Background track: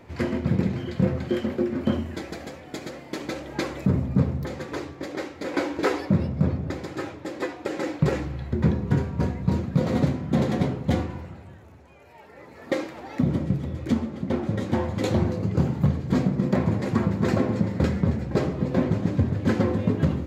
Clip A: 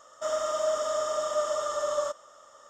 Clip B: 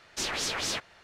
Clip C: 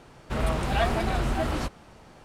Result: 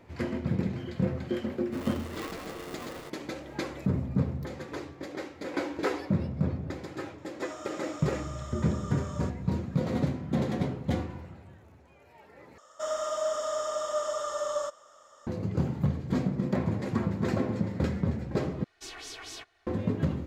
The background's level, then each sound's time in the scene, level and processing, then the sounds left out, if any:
background track −6 dB
0:01.42: mix in C −16 dB + ring modulator with a square carrier 400 Hz
0:07.18: mix in A −11.5 dB + high-pass filter 780 Hz
0:12.58: overwrite with A −2.5 dB
0:18.64: overwrite with B −14.5 dB + comb filter 2.7 ms, depth 97%

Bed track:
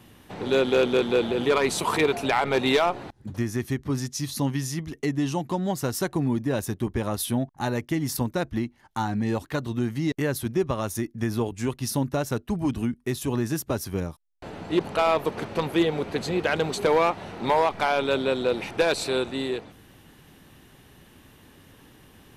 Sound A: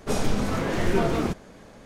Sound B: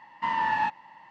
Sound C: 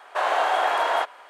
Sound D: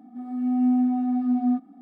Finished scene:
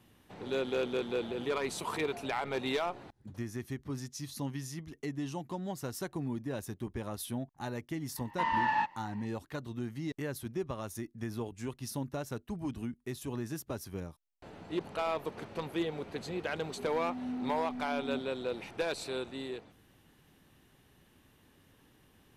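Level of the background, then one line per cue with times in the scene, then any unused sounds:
bed track −11.5 dB
0:08.16: mix in B −3.5 dB
0:16.63: mix in D −17 dB
not used: A, C

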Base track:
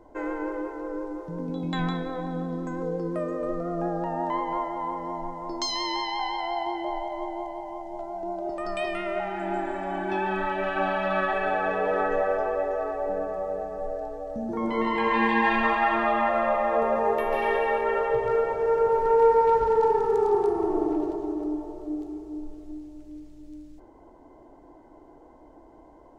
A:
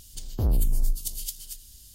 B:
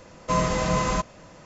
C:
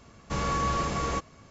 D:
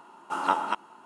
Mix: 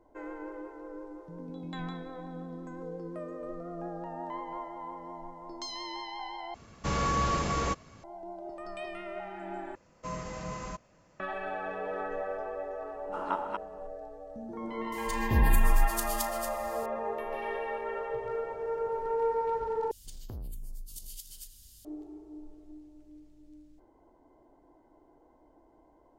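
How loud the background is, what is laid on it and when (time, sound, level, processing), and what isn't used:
base track −10.5 dB
0:06.54: overwrite with C −0.5 dB
0:09.75: overwrite with B −15 dB + parametric band 3,600 Hz −5 dB 0.48 octaves
0:12.82: mix in D −5.5 dB + low-pass filter 1,300 Hz 6 dB per octave
0:14.92: mix in A −1.5 dB + double-tracking delay 36 ms −13 dB
0:19.91: overwrite with A −5.5 dB + downward compressor 4 to 1, threshold −34 dBFS

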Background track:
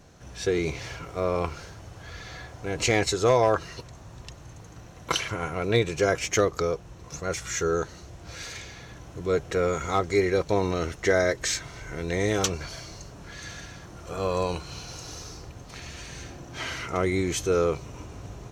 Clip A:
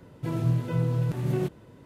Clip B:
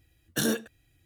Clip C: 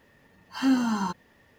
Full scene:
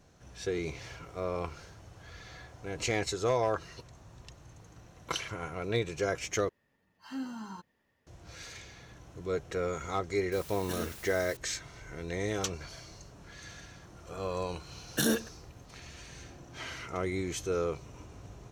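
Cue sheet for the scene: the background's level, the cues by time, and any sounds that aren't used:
background track −8 dB
0:06.49: overwrite with C −15.5 dB
0:10.32: mix in B −13 dB + bit-depth reduction 6 bits, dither triangular
0:14.61: mix in B −1 dB
not used: A

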